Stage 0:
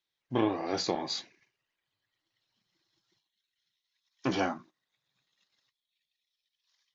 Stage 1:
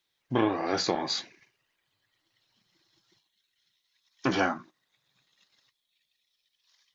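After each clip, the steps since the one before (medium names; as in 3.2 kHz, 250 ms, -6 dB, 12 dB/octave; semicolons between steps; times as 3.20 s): dynamic bell 1.5 kHz, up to +6 dB, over -50 dBFS, Q 1.8; in parallel at +3 dB: compression, threshold -39 dBFS, peak gain reduction 16.5 dB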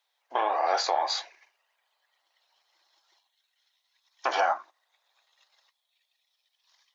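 high-pass 550 Hz 24 dB/octave; peaking EQ 780 Hz +10 dB 1.2 oct; peak limiter -14.5 dBFS, peak gain reduction 5 dB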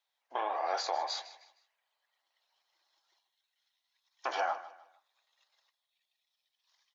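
feedback delay 154 ms, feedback 33%, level -16 dB; trim -7.5 dB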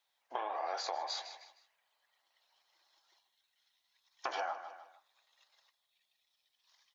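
compression 4:1, threshold -39 dBFS, peak gain reduction 10 dB; trim +3.5 dB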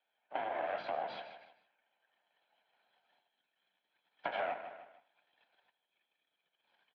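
comb filter that takes the minimum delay 1.2 ms; mistuned SSB -89 Hz 300–3300 Hz; delay 80 ms -17 dB; trim +2 dB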